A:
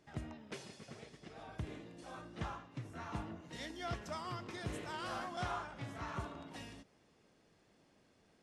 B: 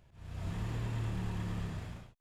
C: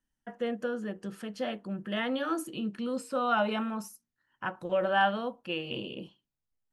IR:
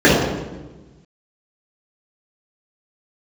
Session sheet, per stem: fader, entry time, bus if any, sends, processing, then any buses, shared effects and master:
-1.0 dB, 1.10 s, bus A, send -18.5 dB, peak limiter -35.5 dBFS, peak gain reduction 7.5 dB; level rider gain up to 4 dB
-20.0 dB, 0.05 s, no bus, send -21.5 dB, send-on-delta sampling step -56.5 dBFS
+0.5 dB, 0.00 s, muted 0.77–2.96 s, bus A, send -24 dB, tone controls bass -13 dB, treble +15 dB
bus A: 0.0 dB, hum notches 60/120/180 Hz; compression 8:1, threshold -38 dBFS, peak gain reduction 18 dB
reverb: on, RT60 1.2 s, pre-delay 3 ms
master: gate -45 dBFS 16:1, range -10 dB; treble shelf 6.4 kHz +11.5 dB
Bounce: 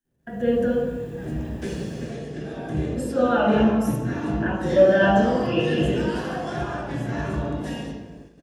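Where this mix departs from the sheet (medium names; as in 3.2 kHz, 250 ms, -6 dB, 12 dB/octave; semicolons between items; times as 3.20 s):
stem B -20.0 dB -> -10.5 dB; stem C: missing tone controls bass -13 dB, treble +15 dB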